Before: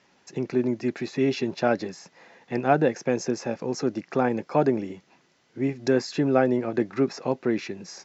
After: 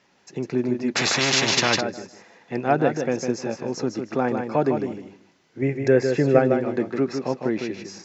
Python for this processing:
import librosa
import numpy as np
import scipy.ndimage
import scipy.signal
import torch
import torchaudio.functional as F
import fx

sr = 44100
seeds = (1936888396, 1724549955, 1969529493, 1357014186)

p1 = fx.graphic_eq_10(x, sr, hz=(125, 250, 500, 1000, 2000, 4000), db=(7, -3, 8, -5, 9, -8), at=(5.62, 6.39))
p2 = p1 + fx.echo_feedback(p1, sr, ms=154, feedback_pct=21, wet_db=-6.0, dry=0)
y = fx.spectral_comp(p2, sr, ratio=4.0, at=(0.95, 1.79), fade=0.02)